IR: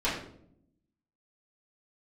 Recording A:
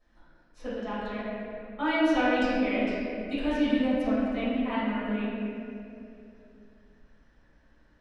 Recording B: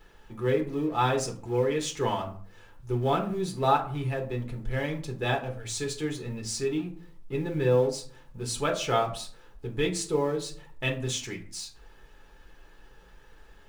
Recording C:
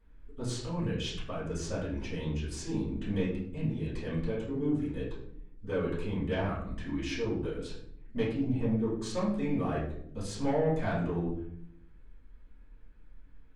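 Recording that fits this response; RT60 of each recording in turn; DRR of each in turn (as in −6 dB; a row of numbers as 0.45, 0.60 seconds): C; 2.8, 0.50, 0.65 seconds; −14.5, 0.0, −11.5 decibels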